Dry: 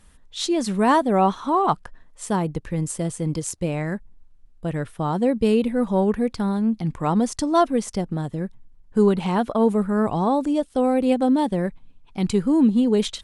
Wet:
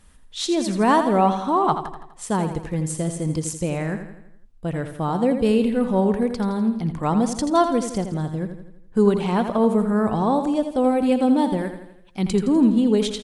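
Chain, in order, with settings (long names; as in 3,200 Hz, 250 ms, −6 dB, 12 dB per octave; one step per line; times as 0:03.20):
0:11.57–0:12.19: tilt shelving filter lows −4 dB, about 1,400 Hz
repeating echo 83 ms, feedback 51%, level −9 dB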